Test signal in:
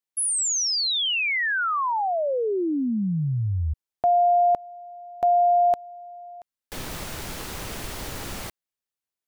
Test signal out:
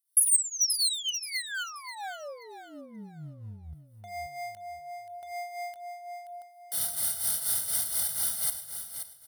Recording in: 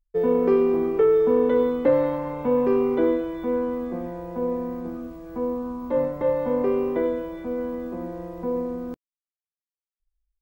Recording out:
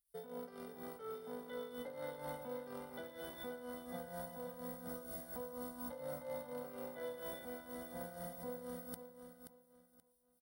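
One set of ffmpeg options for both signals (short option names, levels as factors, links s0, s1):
-filter_complex "[0:a]areverse,acompressor=threshold=0.0398:ratio=16:attack=0.14:release=47:knee=1:detection=rms,areverse,highpass=68,aecho=1:1:1.4:0.8,asplit=2[s0][s1];[s1]alimiter=level_in=2.66:limit=0.0631:level=0:latency=1,volume=0.376,volume=0.891[s2];[s0][s2]amix=inputs=2:normalize=0,agate=range=0.447:threshold=0.0794:ratio=16:release=190:detection=rms,superequalizer=12b=0.251:15b=0.398:16b=2.51,asoftclip=type=hard:threshold=0.0355,crystalizer=i=9:c=0,tremolo=f=4.2:d=0.68,aecho=1:1:529|1058|1587:0.355|0.0958|0.0259,volume=0.376"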